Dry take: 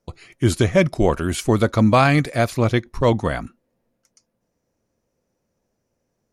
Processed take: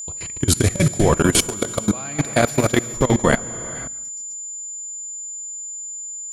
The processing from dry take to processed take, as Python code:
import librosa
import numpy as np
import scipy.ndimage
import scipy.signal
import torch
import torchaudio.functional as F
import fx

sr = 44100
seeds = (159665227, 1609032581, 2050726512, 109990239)

y = fx.high_shelf(x, sr, hz=5500.0, db=7.0)
y = fx.over_compress(y, sr, threshold_db=-19.0, ratio=-1.0)
y = fx.peak_eq(y, sr, hz=85.0, db=-9.5, octaves=0.96, at=(1.19, 3.4), fade=0.02)
y = fx.echo_feedback(y, sr, ms=143, feedback_pct=18, wet_db=-14.0)
y = fx.rev_gated(y, sr, seeds[0], gate_ms=490, shape='flat', drr_db=5.5)
y = fx.level_steps(y, sr, step_db=20)
y = y + 10.0 ** (-35.0 / 20.0) * np.sin(2.0 * np.pi * 7100.0 * np.arange(len(y)) / sr)
y = y * librosa.db_to_amplitude(6.0)